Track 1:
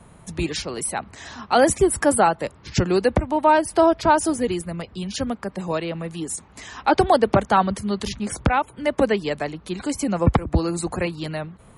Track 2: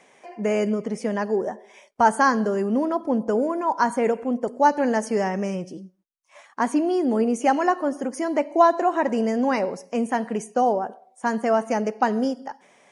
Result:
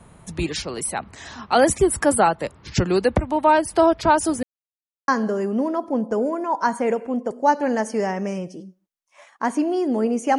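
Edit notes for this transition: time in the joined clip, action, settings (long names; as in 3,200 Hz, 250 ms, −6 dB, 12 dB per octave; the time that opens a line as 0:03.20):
track 1
0:04.43–0:05.08: silence
0:05.08: continue with track 2 from 0:02.25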